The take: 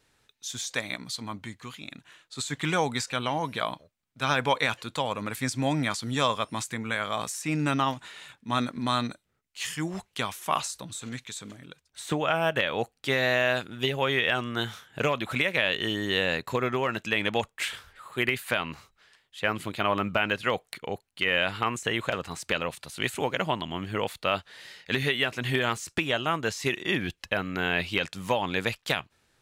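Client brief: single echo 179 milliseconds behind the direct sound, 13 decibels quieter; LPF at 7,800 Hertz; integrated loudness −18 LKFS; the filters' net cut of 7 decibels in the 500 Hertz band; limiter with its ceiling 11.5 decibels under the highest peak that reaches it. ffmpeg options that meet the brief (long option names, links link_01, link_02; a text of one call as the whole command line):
ffmpeg -i in.wav -af "lowpass=7800,equalizer=frequency=500:width_type=o:gain=-9,alimiter=limit=-22dB:level=0:latency=1,aecho=1:1:179:0.224,volume=16.5dB" out.wav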